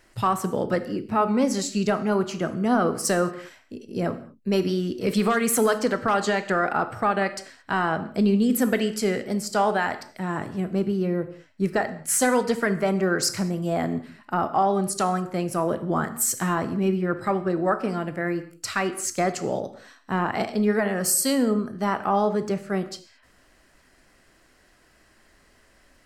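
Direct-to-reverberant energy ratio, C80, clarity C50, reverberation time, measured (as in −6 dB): 10.0 dB, 15.5 dB, 13.0 dB, non-exponential decay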